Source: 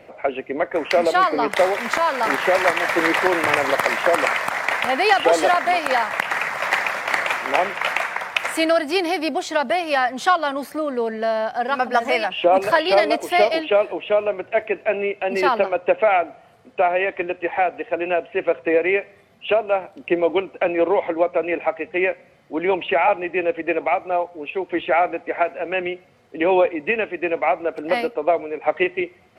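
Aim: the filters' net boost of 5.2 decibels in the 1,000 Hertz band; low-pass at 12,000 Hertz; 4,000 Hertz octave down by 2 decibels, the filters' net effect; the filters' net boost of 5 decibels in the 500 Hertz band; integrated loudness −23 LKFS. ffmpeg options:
ffmpeg -i in.wav -af "lowpass=12000,equalizer=frequency=500:width_type=o:gain=4.5,equalizer=frequency=1000:width_type=o:gain=5.5,equalizer=frequency=4000:width_type=o:gain=-3.5,volume=-6.5dB" out.wav

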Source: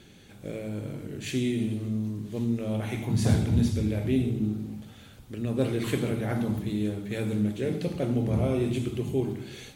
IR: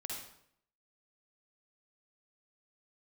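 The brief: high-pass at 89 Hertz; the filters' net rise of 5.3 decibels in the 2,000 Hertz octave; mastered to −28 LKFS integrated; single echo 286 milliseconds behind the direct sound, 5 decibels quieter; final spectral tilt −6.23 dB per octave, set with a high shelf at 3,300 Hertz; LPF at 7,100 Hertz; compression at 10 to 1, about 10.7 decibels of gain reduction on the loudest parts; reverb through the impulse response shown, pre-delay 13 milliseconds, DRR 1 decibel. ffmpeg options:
-filter_complex "[0:a]highpass=89,lowpass=7100,equalizer=frequency=2000:width_type=o:gain=5.5,highshelf=frequency=3300:gain=3,acompressor=threshold=-29dB:ratio=10,aecho=1:1:286:0.562,asplit=2[link_01][link_02];[1:a]atrim=start_sample=2205,adelay=13[link_03];[link_02][link_03]afir=irnorm=-1:irlink=0,volume=-0.5dB[link_04];[link_01][link_04]amix=inputs=2:normalize=0,volume=2.5dB"

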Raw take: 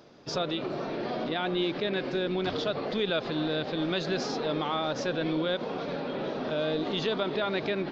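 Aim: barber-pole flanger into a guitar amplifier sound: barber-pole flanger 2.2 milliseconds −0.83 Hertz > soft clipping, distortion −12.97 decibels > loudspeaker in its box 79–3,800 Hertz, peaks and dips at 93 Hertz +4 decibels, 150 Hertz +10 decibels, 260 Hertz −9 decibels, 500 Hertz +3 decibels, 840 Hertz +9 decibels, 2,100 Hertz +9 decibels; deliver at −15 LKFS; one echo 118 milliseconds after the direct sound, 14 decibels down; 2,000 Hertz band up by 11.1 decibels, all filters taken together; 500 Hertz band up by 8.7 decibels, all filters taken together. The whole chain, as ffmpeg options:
ffmpeg -i in.wav -filter_complex "[0:a]equalizer=frequency=500:width_type=o:gain=8,equalizer=frequency=2000:width_type=o:gain=9,aecho=1:1:118:0.2,asplit=2[link_01][link_02];[link_02]adelay=2.2,afreqshift=-0.83[link_03];[link_01][link_03]amix=inputs=2:normalize=1,asoftclip=threshold=-24dB,highpass=79,equalizer=frequency=93:width_type=q:width=4:gain=4,equalizer=frequency=150:width_type=q:width=4:gain=10,equalizer=frequency=260:width_type=q:width=4:gain=-9,equalizer=frequency=500:width_type=q:width=4:gain=3,equalizer=frequency=840:width_type=q:width=4:gain=9,equalizer=frequency=2100:width_type=q:width=4:gain=9,lowpass=frequency=3800:width=0.5412,lowpass=frequency=3800:width=1.3066,volume=13.5dB" out.wav

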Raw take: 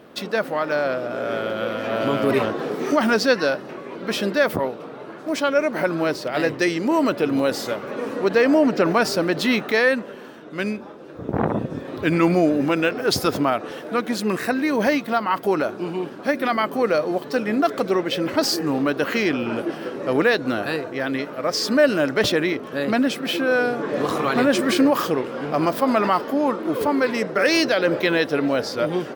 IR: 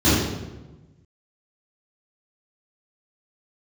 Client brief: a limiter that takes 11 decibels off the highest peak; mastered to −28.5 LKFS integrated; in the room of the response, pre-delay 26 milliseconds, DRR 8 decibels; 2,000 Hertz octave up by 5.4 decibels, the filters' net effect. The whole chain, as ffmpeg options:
-filter_complex "[0:a]equalizer=frequency=2000:width_type=o:gain=7,alimiter=limit=-14dB:level=0:latency=1,asplit=2[link_01][link_02];[1:a]atrim=start_sample=2205,adelay=26[link_03];[link_02][link_03]afir=irnorm=-1:irlink=0,volume=-29dB[link_04];[link_01][link_04]amix=inputs=2:normalize=0,volume=-7.5dB"

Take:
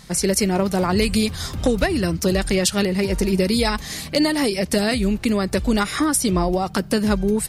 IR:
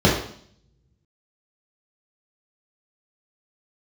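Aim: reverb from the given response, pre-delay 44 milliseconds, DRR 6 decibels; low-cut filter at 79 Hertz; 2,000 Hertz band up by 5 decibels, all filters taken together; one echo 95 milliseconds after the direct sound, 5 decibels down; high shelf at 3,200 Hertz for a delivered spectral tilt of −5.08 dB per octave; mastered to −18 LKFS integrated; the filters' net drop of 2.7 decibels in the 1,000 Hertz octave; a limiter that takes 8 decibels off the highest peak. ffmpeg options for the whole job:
-filter_complex "[0:a]highpass=79,equalizer=frequency=1000:width_type=o:gain=-6,equalizer=frequency=2000:width_type=o:gain=6.5,highshelf=frequency=3200:gain=3.5,alimiter=limit=-11.5dB:level=0:latency=1,aecho=1:1:95:0.562,asplit=2[link_01][link_02];[1:a]atrim=start_sample=2205,adelay=44[link_03];[link_02][link_03]afir=irnorm=-1:irlink=0,volume=-27.5dB[link_04];[link_01][link_04]amix=inputs=2:normalize=0,volume=-1.5dB"

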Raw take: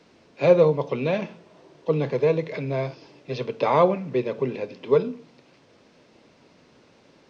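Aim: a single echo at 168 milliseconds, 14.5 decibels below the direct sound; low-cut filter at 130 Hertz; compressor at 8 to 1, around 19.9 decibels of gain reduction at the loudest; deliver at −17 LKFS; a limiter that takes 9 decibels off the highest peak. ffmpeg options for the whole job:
ffmpeg -i in.wav -af "highpass=130,acompressor=threshold=-33dB:ratio=8,alimiter=level_in=6.5dB:limit=-24dB:level=0:latency=1,volume=-6.5dB,aecho=1:1:168:0.188,volume=24.5dB" out.wav

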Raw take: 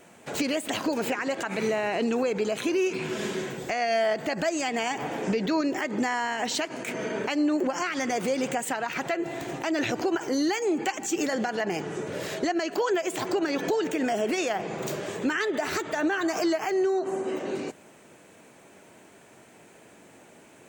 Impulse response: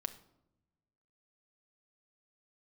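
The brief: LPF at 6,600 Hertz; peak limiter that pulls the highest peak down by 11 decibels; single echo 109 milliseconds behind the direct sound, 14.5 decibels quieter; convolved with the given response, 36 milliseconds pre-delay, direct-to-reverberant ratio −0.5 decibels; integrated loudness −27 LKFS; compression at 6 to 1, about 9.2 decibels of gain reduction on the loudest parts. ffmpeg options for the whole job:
-filter_complex "[0:a]lowpass=6600,acompressor=threshold=-32dB:ratio=6,alimiter=level_in=7dB:limit=-24dB:level=0:latency=1,volume=-7dB,aecho=1:1:109:0.188,asplit=2[link_01][link_02];[1:a]atrim=start_sample=2205,adelay=36[link_03];[link_02][link_03]afir=irnorm=-1:irlink=0,volume=1.5dB[link_04];[link_01][link_04]amix=inputs=2:normalize=0,volume=8.5dB"

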